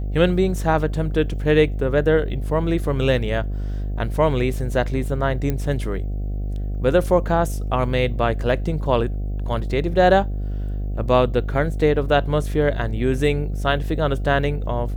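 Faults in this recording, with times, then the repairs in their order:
mains buzz 50 Hz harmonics 15 −25 dBFS
0:05.50: click −11 dBFS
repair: click removal
hum removal 50 Hz, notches 15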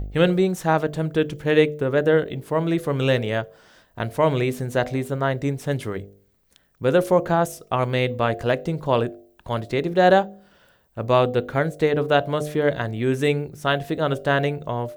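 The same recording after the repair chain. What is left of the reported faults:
none of them is left

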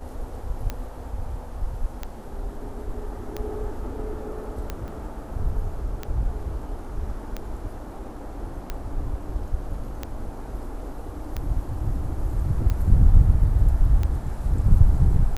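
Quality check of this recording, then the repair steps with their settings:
scratch tick 45 rpm −15 dBFS
0:04.88: drop-out 3.9 ms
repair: click removal
repair the gap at 0:04.88, 3.9 ms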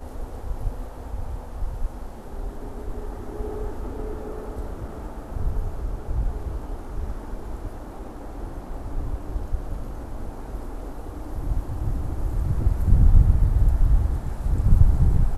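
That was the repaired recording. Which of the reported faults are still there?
none of them is left

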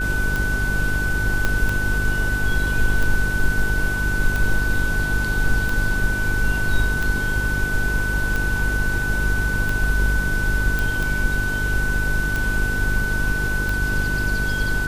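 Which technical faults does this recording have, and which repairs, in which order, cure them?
mains buzz 50 Hz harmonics 9 −26 dBFS
scratch tick 45 rpm
whistle 1,500 Hz −23 dBFS
0:01.45: click −7 dBFS
0:10.79: click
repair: click removal
hum removal 50 Hz, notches 9
notch filter 1,500 Hz, Q 30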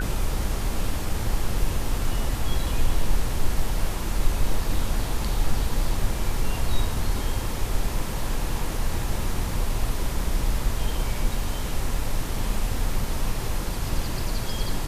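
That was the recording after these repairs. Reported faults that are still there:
0:01.45: click

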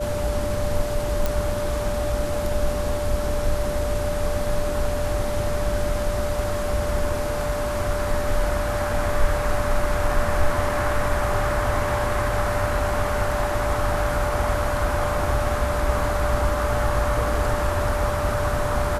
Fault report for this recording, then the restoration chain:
whistle 590 Hz −26 dBFS
0:01.26: click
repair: click removal
notch filter 590 Hz, Q 30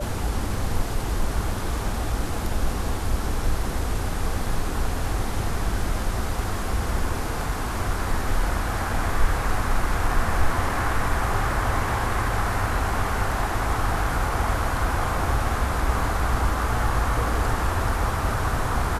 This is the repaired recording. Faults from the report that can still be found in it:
none of them is left

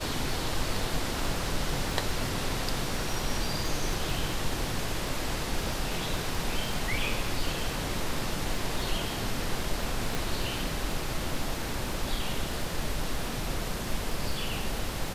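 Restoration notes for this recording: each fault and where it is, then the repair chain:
surface crackle 23 per second −33 dBFS
0:10.15: click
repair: click removal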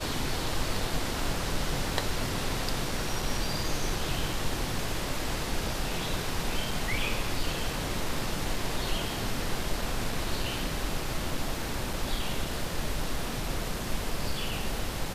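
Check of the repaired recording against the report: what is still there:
0:10.15: click

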